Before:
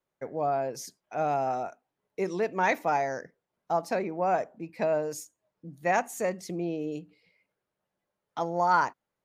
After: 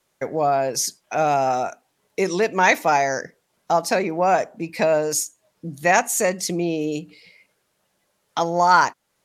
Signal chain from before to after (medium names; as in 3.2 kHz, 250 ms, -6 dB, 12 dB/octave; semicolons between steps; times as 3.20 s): Bessel low-pass 12 kHz, order 2; treble shelf 2.6 kHz +12 dB; in parallel at +1 dB: compression, threshold -38 dBFS, peak gain reduction 19.5 dB; on the sum: trim +5.5 dB